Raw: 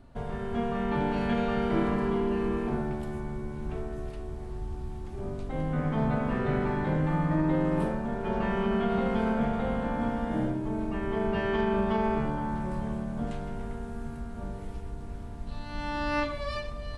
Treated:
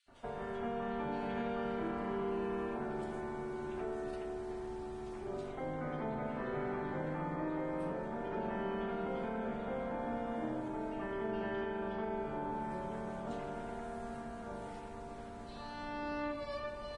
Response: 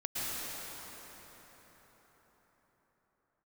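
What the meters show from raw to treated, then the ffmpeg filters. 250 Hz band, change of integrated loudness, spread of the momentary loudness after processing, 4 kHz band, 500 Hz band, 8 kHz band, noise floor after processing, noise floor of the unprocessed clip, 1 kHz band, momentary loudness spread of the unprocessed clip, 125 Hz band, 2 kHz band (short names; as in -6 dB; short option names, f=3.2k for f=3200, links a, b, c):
-11.0 dB, -9.5 dB, 7 LU, -10.0 dB, -7.0 dB, n/a, -46 dBFS, -38 dBFS, -7.0 dB, 12 LU, -15.0 dB, -8.5 dB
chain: -filter_complex "[0:a]bass=f=250:g=-8,treble=f=4k:g=-4,acrossover=split=140|490[a][b][c];[a]acompressor=threshold=-45dB:ratio=4[d];[b]acompressor=threshold=-36dB:ratio=4[e];[c]acompressor=threshold=-45dB:ratio=4[f];[d][e][f]amix=inputs=3:normalize=0,lowshelf=f=360:g=-8.5,bandreject=f=1.1k:w=26,acrossover=split=2700[g][h];[g]adelay=80[i];[i][h]amix=inputs=2:normalize=0,asplit=2[j][k];[1:a]atrim=start_sample=2205,asetrate=24255,aresample=44100,lowpass=4.6k[l];[k][l]afir=irnorm=-1:irlink=0,volume=-20dB[m];[j][m]amix=inputs=2:normalize=0,volume=1.5dB" -ar 22050 -c:a libvorbis -b:a 32k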